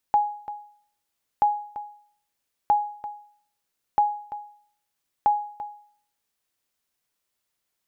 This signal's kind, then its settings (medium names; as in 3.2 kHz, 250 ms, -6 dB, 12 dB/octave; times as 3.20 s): sonar ping 831 Hz, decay 0.55 s, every 1.28 s, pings 5, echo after 0.34 s, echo -14 dB -12.5 dBFS